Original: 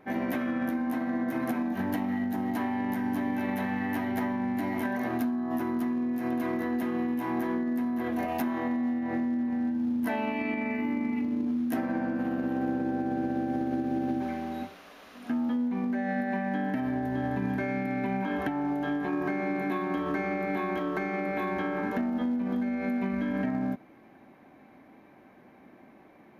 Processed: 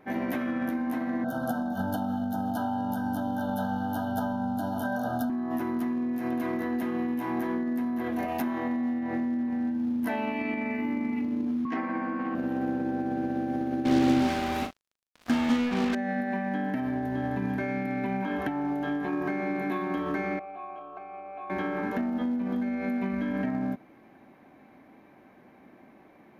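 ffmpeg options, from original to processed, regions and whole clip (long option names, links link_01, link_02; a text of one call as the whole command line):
ffmpeg -i in.wav -filter_complex "[0:a]asettb=1/sr,asplit=3[link_01][link_02][link_03];[link_01]atrim=end=1.244[link_04];[link_02]atrim=start=1.24:end=5.3,asetpts=PTS-STARTPTS,afade=type=in:duration=0.004:curve=qsin,afade=type=out:start_time=4.056:duration=0.004:curve=qsin,asuperstop=centerf=2200:order=20:qfactor=1.6,aecho=1:1:1.4:0.8,atrim=end_sample=179046[link_05];[link_03]atrim=start=5.296[link_06];[link_04][link_05]acrossfade=duration=0.004:curve1=hsin:curve2=qsin[link_07];[link_07][link_06]acrossfade=duration=0.004:curve1=qsin:curve2=hsin,asettb=1/sr,asplit=3[link_08][link_09][link_10];[link_08]atrim=end=11.654[link_11];[link_09]atrim=start=11.65:end=12.35,asetpts=PTS-STARTPTS,afade=type=in:duration=0.004:curve=qsin,afade=type=out:start_time=0.696:duration=0.004:curve=qsin,aeval=exprs='val(0)+0.0126*sin(2*PI*1100*n/s)':channel_layout=same,highpass=frequency=120:width=0.5412,highpass=frequency=120:width=1.3066,equalizer=frequency=130:width_type=q:width=4:gain=-8,equalizer=frequency=220:width_type=q:width=4:gain=-4,equalizer=frequency=600:width_type=q:width=4:gain=-6,equalizer=frequency=960:width_type=q:width=4:gain=3,equalizer=frequency=2100:width_type=q:width=4:gain=8,equalizer=frequency=3800:width_type=q:width=4:gain=-4,lowpass=frequency=4900:width=0.5412,lowpass=frequency=4900:width=1.3066[link_12];[link_10]atrim=start=12.346[link_13];[link_11][link_12]acrossfade=duration=0.004:curve1=hsin:curve2=qsin[link_14];[link_14][link_13]acrossfade=duration=0.004:curve1=qsin:curve2=hsin,asettb=1/sr,asplit=3[link_15][link_16][link_17];[link_15]atrim=end=13.854[link_18];[link_16]atrim=start=13.85:end=15.95,asetpts=PTS-STARTPTS,afade=type=in:duration=0.004:curve=qsin,afade=type=out:start_time=2.096:duration=0.004:curve=qsin,acontrast=43,acrusher=bits=4:mix=0:aa=0.5,asplit=2[link_19][link_20];[link_20]adelay=39,volume=-7.5dB[link_21];[link_19][link_21]amix=inputs=2:normalize=0,atrim=end_sample=92610[link_22];[link_17]atrim=start=15.946[link_23];[link_18][link_22]acrossfade=duration=0.004:curve1=hsin:curve2=qsin[link_24];[link_24][link_23]acrossfade=duration=0.004:curve1=qsin:curve2=hsin,asettb=1/sr,asplit=3[link_25][link_26][link_27];[link_25]atrim=end=20.394[link_28];[link_26]atrim=start=20.39:end=21.5,asetpts=PTS-STARTPTS,afade=type=in:duration=0.004:curve=qsin,afade=type=out:start_time=1.106:duration=0.004:curve=qsin,asplit=3[link_29][link_30][link_31];[link_29]bandpass=frequency=730:width_type=q:width=8,volume=0dB[link_32];[link_30]bandpass=frequency=1090:width_type=q:width=8,volume=-6dB[link_33];[link_31]bandpass=frequency=2440:width_type=q:width=8,volume=-9dB[link_34];[link_32][link_33][link_34]amix=inputs=3:normalize=0,aeval=exprs='val(0)+0.000282*(sin(2*PI*60*n/s)+sin(2*PI*2*60*n/s)/2+sin(2*PI*3*60*n/s)/3+sin(2*PI*4*60*n/s)/4+sin(2*PI*5*60*n/s)/5)':channel_layout=same[link_35];[link_27]atrim=start=21.496[link_36];[link_28][link_35]acrossfade=duration=0.004:curve1=hsin:curve2=qsin[link_37];[link_37][link_36]acrossfade=duration=0.004:curve1=qsin:curve2=hsin" out.wav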